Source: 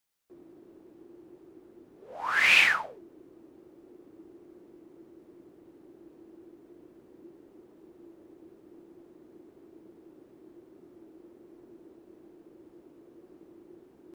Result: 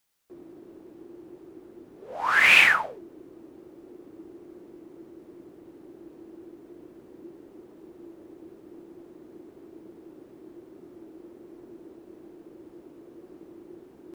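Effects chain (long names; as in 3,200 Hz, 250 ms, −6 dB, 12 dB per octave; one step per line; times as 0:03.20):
dynamic equaliser 4,800 Hz, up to −6 dB, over −36 dBFS, Q 0.95
level +6 dB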